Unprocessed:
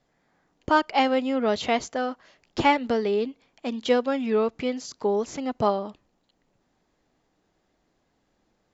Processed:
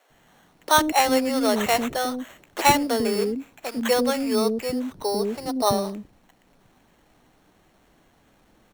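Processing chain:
mu-law and A-law mismatch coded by mu
0:04.22–0:05.66: low-pass filter 1,900 Hz → 1,200 Hz 6 dB per octave
decimation without filtering 9×
multiband delay without the direct sound highs, lows 100 ms, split 410 Hz
level +3 dB

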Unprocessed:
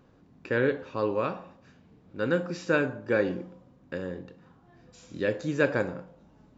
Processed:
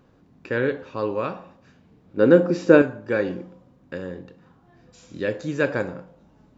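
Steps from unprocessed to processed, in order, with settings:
0:02.17–0:02.82: parametric band 360 Hz +12.5 dB 2.4 octaves
level +2 dB

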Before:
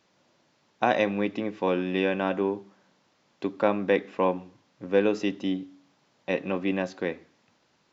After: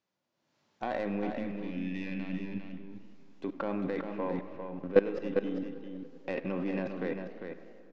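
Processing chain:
stylus tracing distortion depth 0.14 ms
harmonic and percussive parts rebalanced percussive −7 dB
output level in coarse steps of 20 dB
gain on a spectral selection 0:01.31–0:02.80, 290–1,700 Hz −16 dB
automatic gain control gain up to 14 dB
treble cut that deepens with the level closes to 2,900 Hz, closed at −41.5 dBFS
single-tap delay 400 ms −7 dB
convolution reverb RT60 2.6 s, pre-delay 35 ms, DRR 14.5 dB
feedback echo with a swinging delay time 97 ms, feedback 78%, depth 189 cents, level −19 dB
level −7 dB

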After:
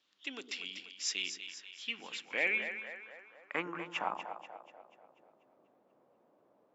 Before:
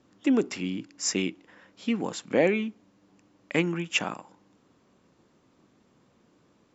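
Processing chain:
echo with a time of its own for lows and highs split 450 Hz, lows 106 ms, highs 243 ms, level −9 dB
band-pass filter sweep 3,500 Hz → 640 Hz, 0:01.68–0:04.76
level +2.5 dB

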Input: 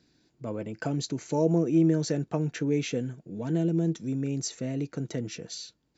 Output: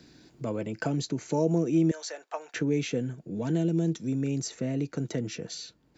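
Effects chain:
0:01.91–0:02.54: high-pass filter 670 Hz 24 dB per octave
multiband upward and downward compressor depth 40%

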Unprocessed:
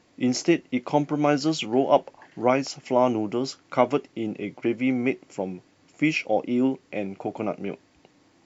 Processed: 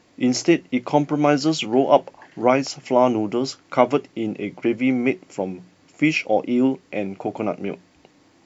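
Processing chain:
mains-hum notches 60/120/180 Hz
level +4 dB

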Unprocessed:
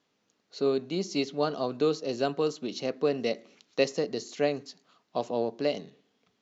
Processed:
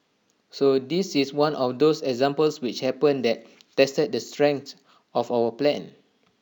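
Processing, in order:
linearly interpolated sample-rate reduction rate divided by 2×
level +6.5 dB

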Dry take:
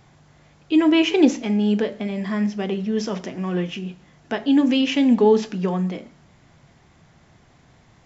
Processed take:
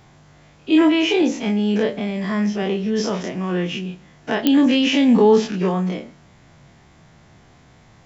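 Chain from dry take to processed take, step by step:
every bin's largest magnitude spread in time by 60 ms
0:00.88–0:01.83: downward compressor 10 to 1, threshold −14 dBFS, peak gain reduction 8.5 dB
digital clicks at 0:04.47, −4 dBFS

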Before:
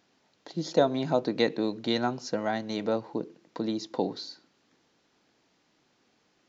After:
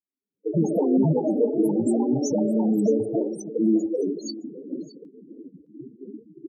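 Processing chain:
camcorder AGC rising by 63 dB per second
elliptic band-stop filter 450–6,500 Hz, stop band 40 dB
mains-hum notches 60/120/180/240/300/360/420 Hz
noise gate −41 dBFS, range −47 dB
in parallel at +1.5 dB: downward compressor, threshold −34 dBFS, peak gain reduction 14.5 dB
on the sum: soft clipping −23 dBFS, distortion −9 dB
spectral peaks only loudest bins 4
delay with pitch and tempo change per echo 193 ms, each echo +5 semitones, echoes 2, each echo −6 dB
on a send: single-tap delay 615 ms −18 dB
on the sum: level +8.5 dB

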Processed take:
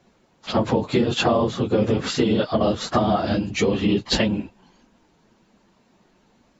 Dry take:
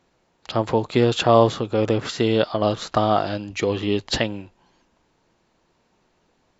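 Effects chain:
random phases in long frames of 50 ms
parametric band 210 Hz +7.5 dB 0.77 octaves
downward compressor 12 to 1, threshold −19 dBFS, peak gain reduction 12.5 dB
level +3.5 dB

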